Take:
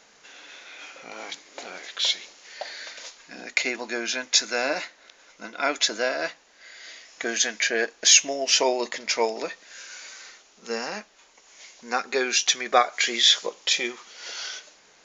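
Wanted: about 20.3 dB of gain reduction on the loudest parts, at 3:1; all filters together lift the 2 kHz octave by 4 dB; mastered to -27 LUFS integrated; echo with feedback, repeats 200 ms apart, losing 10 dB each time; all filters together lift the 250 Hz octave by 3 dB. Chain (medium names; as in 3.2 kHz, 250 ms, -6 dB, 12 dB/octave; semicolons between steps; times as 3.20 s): peaking EQ 250 Hz +4 dB; peaking EQ 2 kHz +5 dB; compression 3:1, threshold -40 dBFS; feedback delay 200 ms, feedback 32%, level -10 dB; trim +11.5 dB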